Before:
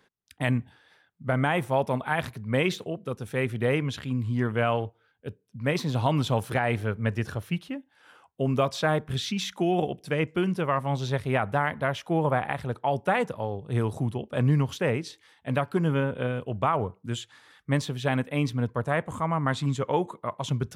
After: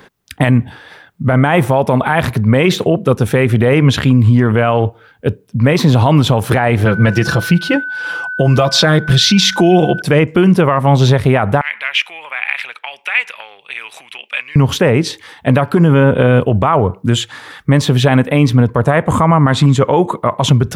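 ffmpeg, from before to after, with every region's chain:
-filter_complex "[0:a]asettb=1/sr,asplit=3[s0][s1][s2];[s0]atrim=end=6.854[s3];[s1]atrim=start=6.85:end=10.02,asetpts=PTS-STARTPTS,afade=t=in:d=0.004:c=qsin,afade=t=out:st=3.166:d=0.004:c=qsin,equalizer=f=4800:w=1.4:g=9.5,aecho=1:1:5.9:0.69,atrim=end_sample=139797,aeval=exprs='val(0)+0.00794*sin(2*PI*1500*n/s)':c=same[s4];[s2]atrim=start=10.016[s5];[s3][s4]acrossfade=d=0.004:c1=hsin:c2=qsin[s6];[s6][s5]acrossfade=d=0.004:c1=qsin:c2=hsin,asettb=1/sr,asplit=3[s7][s8][s9];[s7]atrim=end=11.614[s10];[s8]atrim=start=11.61:end=14.56,asetpts=PTS-STARTPTS,afade=t=in:d=0.004:c=qsin,afade=t=out:st=2.946:d=0.004:c=qsin,highshelf=f=4500:g=-10,acompressor=threshold=0.0282:ratio=6:attack=3.2:release=140:knee=1:detection=peak,highpass=f=2400:t=q:w=5.2[s11];[s9]atrim=start=14.556[s12];[s10][s11]acrossfade=d=0.004:c1=hsin:c2=qsin[s13];[s13][s12]acrossfade=d=0.004:c1=qsin:c2=hsin,equalizer=f=7400:t=o:w=2.8:g=-5,acompressor=threshold=0.0447:ratio=6,alimiter=level_in=16.8:limit=0.891:release=50:level=0:latency=1,volume=0.891"

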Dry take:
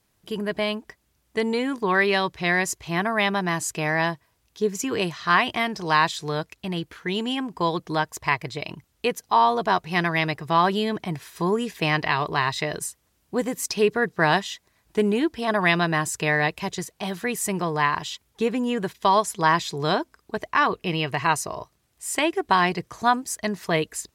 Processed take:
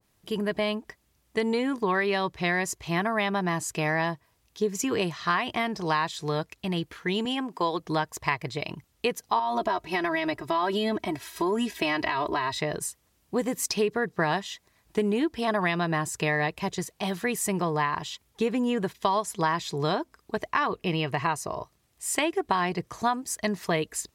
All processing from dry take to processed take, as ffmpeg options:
-filter_complex "[0:a]asettb=1/sr,asplit=3[s0][s1][s2];[s0]atrim=end=7.254[s3];[s1]atrim=start=7.25:end=7.8,asetpts=PTS-STARTPTS,afade=t=in:d=0.004:c=qsin,afade=t=out:st=0.546:d=0.004:c=qsin,highpass=250,acompressor=mode=upward:threshold=0.0126:ratio=2.5:attack=3.2:release=140:knee=2.83:detection=peak[s4];[s2]atrim=start=7.796[s5];[s3][s4]acrossfade=d=0.004:c1=hsin:c2=qsin[s6];[s6][s5]acrossfade=d=0.004:c1=qsin:c2=hsin,asettb=1/sr,asplit=3[s7][s8][s9];[s7]atrim=end=9.394[s10];[s8]atrim=start=9.39:end=12.59,asetpts=PTS-STARTPTS,afade=t=in:d=0.004:c=qsin,afade=t=out:st=3.196:d=0.004:c=qsin,aecho=1:1:3.1:0.84,atrim=end_sample=141120,acompressor=threshold=0.1:ratio=5:attack=3.2:release=140:knee=1:detection=peak[s11];[s9]atrim=start=12.586[s12];[s10][s11]acrossfade=d=0.004:c1=hsin:c2=qsin[s13];[s13][s12]acrossfade=d=0.004:c1=qsin:c2=hsin,bandreject=f=1500:w=20,acompressor=threshold=0.0891:ratio=6,adynamicequalizer=threshold=0.0141:dfrequency=1600:dqfactor=0.7:tfrequency=1600:tqfactor=0.7:attack=5:release=100:ratio=0.375:range=3:mode=cutabove:tftype=highshelf"

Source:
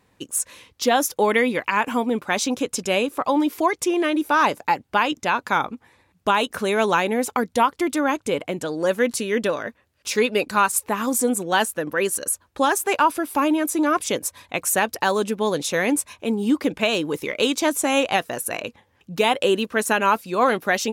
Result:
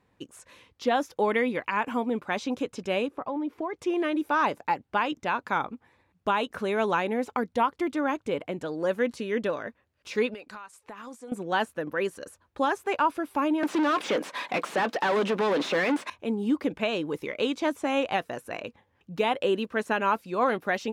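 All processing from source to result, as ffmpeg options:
-filter_complex "[0:a]asettb=1/sr,asplit=3[s0][s1][s2];[s0]atrim=end=3.084[s3];[s1]atrim=start=3.08:end=3.76,asetpts=PTS-STARTPTS,afade=t=in:d=0.004:c=qsin,afade=t=out:st=0.676:d=0.004:c=qsin,lowpass=f=1100:p=1,acompressor=threshold=0.0891:ratio=6:attack=3.2:release=140:knee=1:detection=peak[s4];[s2]atrim=start=3.756[s5];[s3][s4]acrossfade=d=0.004:c1=hsin:c2=qsin[s6];[s6][s5]acrossfade=d=0.004:c1=qsin:c2=hsin,asettb=1/sr,asplit=3[s7][s8][s9];[s7]atrim=end=10.344[s10];[s8]atrim=start=10.34:end=11.32,asetpts=PTS-STARTPTS,afade=t=in:d=0.004:c=qsin,afade=t=out:st=0.976:d=0.004:c=qsin,lowpass=9900,lowshelf=f=460:g=-10.5,acompressor=threshold=0.0282:ratio=16:attack=3.2:release=140:knee=1:detection=peak[s11];[s9]atrim=start=11.316[s12];[s10][s11]acrossfade=d=0.004:c1=hsin:c2=qsin[s13];[s13][s12]acrossfade=d=0.004:c1=qsin:c2=hsin,asettb=1/sr,asplit=3[s14][s15][s16];[s14]atrim=end=13.634[s17];[s15]atrim=start=13.63:end=16.1,asetpts=PTS-STARTPTS,afade=t=in:d=0.004:c=qsin,afade=t=out:st=2.466:d=0.004:c=qsin,acompressor=threshold=0.0708:ratio=2.5:attack=3.2:release=140:knee=1:detection=peak,asplit=2[s18][s19];[s19]highpass=f=720:p=1,volume=31.6,asoftclip=type=tanh:threshold=0.266[s20];[s18][s20]amix=inputs=2:normalize=0,lowpass=f=4800:p=1,volume=0.501,highpass=f=180:w=0.5412,highpass=f=180:w=1.3066[s21];[s16]atrim=start=16.096[s22];[s17][s21]acrossfade=d=0.004:c1=hsin:c2=qsin[s23];[s23][s22]acrossfade=d=0.004:c1=qsin:c2=hsin,acrossover=split=5000[s24][s25];[s25]acompressor=threshold=0.0158:ratio=4:attack=1:release=60[s26];[s24][s26]amix=inputs=2:normalize=0,highshelf=f=4400:g=-11.5,volume=0.531"

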